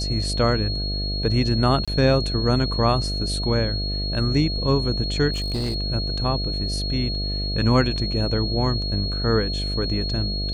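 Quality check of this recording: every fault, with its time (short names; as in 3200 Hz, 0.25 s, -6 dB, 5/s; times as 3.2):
buzz 50 Hz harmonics 14 -27 dBFS
tone 4300 Hz -28 dBFS
1.85–1.88 gap 26 ms
5.32–5.76 clipped -21.5 dBFS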